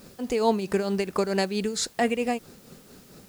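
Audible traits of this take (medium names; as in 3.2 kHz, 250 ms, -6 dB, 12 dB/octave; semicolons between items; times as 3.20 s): tremolo triangle 4.5 Hz, depth 70%; a quantiser's noise floor 10-bit, dither triangular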